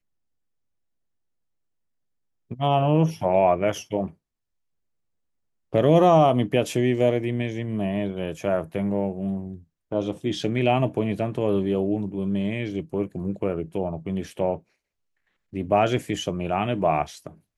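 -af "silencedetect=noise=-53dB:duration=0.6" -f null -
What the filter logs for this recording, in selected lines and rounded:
silence_start: 0.00
silence_end: 2.50 | silence_duration: 2.50
silence_start: 4.14
silence_end: 5.73 | silence_duration: 1.58
silence_start: 14.63
silence_end: 15.53 | silence_duration: 0.90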